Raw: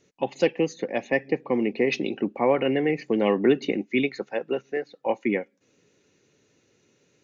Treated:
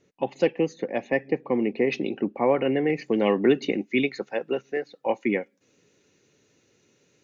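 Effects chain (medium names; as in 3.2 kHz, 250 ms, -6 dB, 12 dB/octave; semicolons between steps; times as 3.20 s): treble shelf 3.2 kHz -8 dB, from 2.90 s +2 dB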